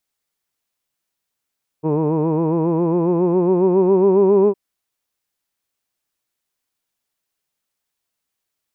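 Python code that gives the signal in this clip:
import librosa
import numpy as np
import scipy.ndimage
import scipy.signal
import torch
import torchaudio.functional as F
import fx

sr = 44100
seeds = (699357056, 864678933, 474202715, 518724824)

y = fx.formant_vowel(sr, seeds[0], length_s=2.71, hz=151.0, glide_st=5.0, vibrato_hz=7.3, vibrato_st=0.8, f1_hz=400.0, f2_hz=970.0, f3_hz=2500.0)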